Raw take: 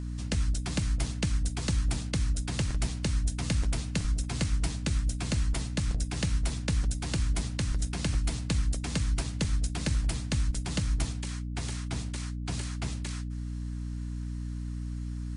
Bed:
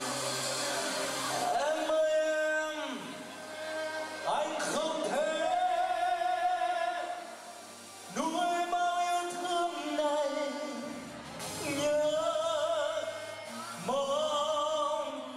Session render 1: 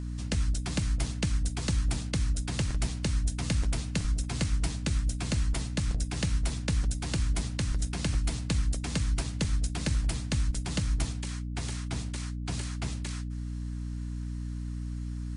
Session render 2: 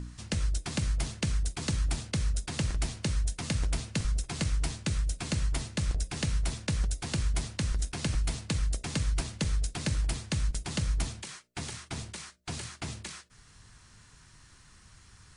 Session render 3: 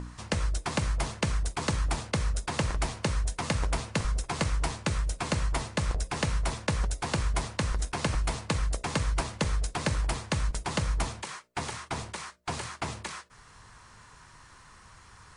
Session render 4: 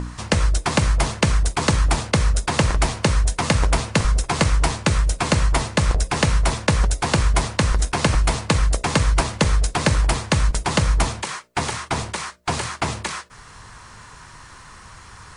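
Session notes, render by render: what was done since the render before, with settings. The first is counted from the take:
no audible change
de-hum 60 Hz, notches 11
ten-band graphic EQ 500 Hz +6 dB, 1 kHz +11 dB, 2 kHz +3 dB
trim +10.5 dB

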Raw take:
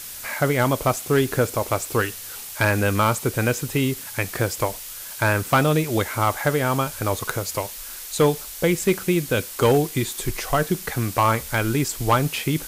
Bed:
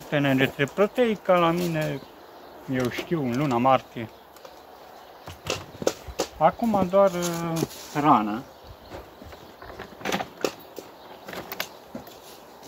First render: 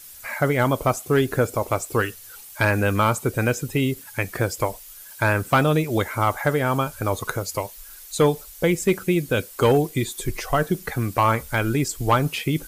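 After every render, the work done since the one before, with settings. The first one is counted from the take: noise reduction 11 dB, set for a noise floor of -36 dBFS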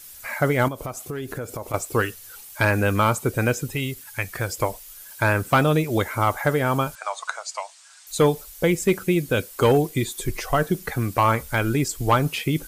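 0.68–1.74 s: compression 5:1, threshold -28 dBFS; 3.75–4.49 s: peaking EQ 310 Hz -8.5 dB 2.3 oct; 6.95–8.07 s: Chebyshev band-pass 670–8400 Hz, order 4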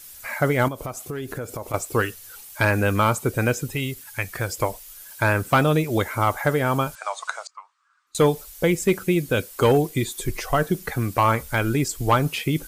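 7.47–8.15 s: two resonant band-passes 620 Hz, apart 1.9 oct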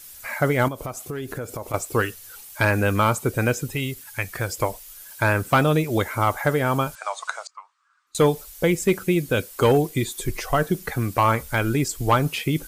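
no audible change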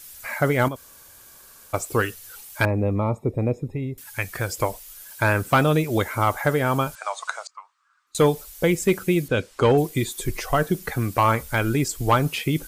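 0.76–1.73 s: room tone; 2.65–3.98 s: boxcar filter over 29 samples; 9.28–9.78 s: distance through air 83 m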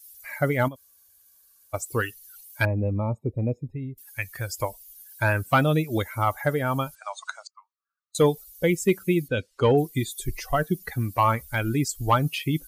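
expander on every frequency bin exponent 1.5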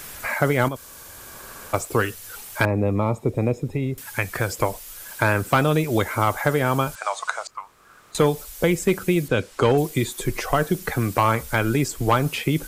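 spectral levelling over time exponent 0.6; three bands compressed up and down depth 40%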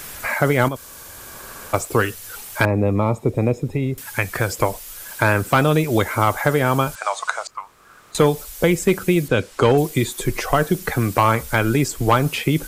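trim +3 dB; peak limiter -2 dBFS, peak gain reduction 1.5 dB

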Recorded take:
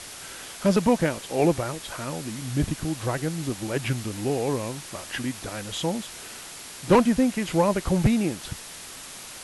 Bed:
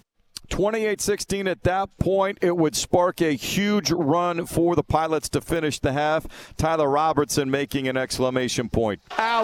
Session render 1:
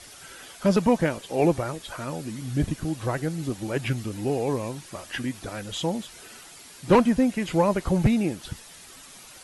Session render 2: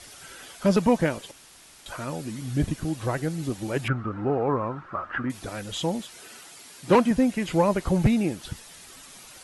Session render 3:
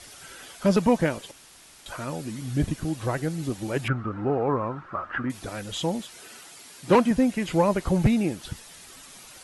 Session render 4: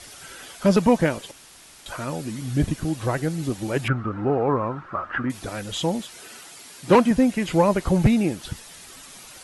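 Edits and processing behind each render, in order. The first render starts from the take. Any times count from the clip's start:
noise reduction 9 dB, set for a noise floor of -41 dBFS
1.31–1.86 s: room tone; 3.88–5.30 s: resonant low-pass 1.3 kHz, resonance Q 7.1; 5.99–7.11 s: high-pass 160 Hz 6 dB/octave
no audible change
trim +3 dB

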